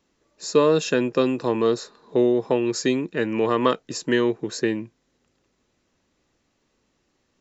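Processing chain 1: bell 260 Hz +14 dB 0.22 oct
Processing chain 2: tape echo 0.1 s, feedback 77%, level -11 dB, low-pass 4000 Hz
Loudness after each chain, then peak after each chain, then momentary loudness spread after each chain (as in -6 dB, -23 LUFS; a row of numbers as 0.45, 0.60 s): -18.5, -22.0 LUFS; -2.5, -5.0 dBFS; 10, 8 LU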